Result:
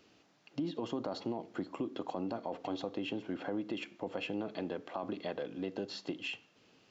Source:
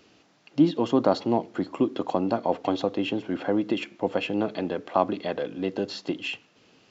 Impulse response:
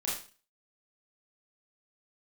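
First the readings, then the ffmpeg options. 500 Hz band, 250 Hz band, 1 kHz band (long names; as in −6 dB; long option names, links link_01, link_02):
−13.0 dB, −12.5 dB, −14.0 dB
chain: -filter_complex "[0:a]alimiter=limit=-16.5dB:level=0:latency=1:release=23,acompressor=threshold=-28dB:ratio=2.5,asplit=2[link_01][link_02];[1:a]atrim=start_sample=2205,asetrate=40572,aresample=44100[link_03];[link_02][link_03]afir=irnorm=-1:irlink=0,volume=-25.5dB[link_04];[link_01][link_04]amix=inputs=2:normalize=0,volume=-7dB"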